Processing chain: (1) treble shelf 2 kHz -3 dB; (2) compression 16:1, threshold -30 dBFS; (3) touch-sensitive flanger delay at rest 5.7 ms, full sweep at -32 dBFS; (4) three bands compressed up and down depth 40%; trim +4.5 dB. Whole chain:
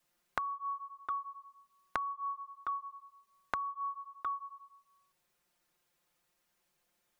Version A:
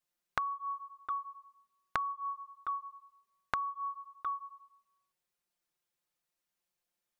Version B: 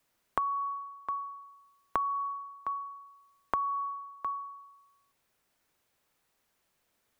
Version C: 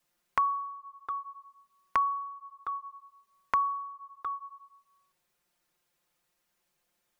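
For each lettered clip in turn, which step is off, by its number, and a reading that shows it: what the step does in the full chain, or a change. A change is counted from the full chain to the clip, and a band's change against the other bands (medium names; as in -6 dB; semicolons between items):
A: 4, momentary loudness spread change +2 LU; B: 3, 2 kHz band -10.0 dB; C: 2, mean gain reduction 2.5 dB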